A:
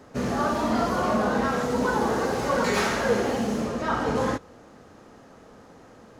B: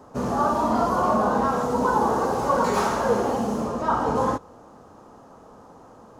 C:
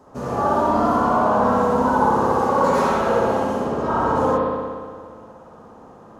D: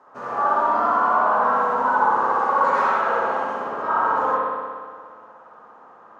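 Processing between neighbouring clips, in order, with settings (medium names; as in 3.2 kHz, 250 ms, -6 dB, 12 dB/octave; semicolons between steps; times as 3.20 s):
ten-band graphic EQ 1 kHz +9 dB, 2 kHz -10 dB, 4 kHz -4 dB
spring tank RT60 1.8 s, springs 59 ms, chirp 45 ms, DRR -5.5 dB; trim -3 dB
band-pass filter 1.4 kHz, Q 1.5; trim +4.5 dB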